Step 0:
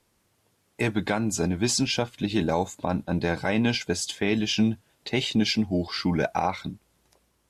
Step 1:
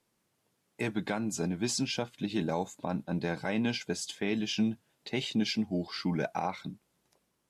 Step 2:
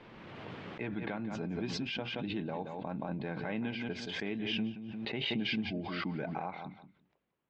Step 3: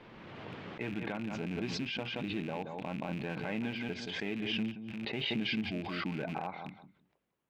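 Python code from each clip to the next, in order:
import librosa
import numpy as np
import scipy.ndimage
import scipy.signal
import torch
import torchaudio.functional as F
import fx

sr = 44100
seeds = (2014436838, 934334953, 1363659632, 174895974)

y1 = fx.low_shelf_res(x, sr, hz=110.0, db=-8.0, q=1.5)
y1 = F.gain(torch.from_numpy(y1), -7.5).numpy()
y2 = scipy.signal.sosfilt(scipy.signal.butter(4, 3100.0, 'lowpass', fs=sr, output='sos'), y1)
y2 = fx.echo_feedback(y2, sr, ms=175, feedback_pct=17, wet_db=-11.5)
y2 = fx.pre_swell(y2, sr, db_per_s=22.0)
y2 = F.gain(torch.from_numpy(y2), -7.0).numpy()
y3 = fx.rattle_buzz(y2, sr, strikes_db=-42.0, level_db=-35.0)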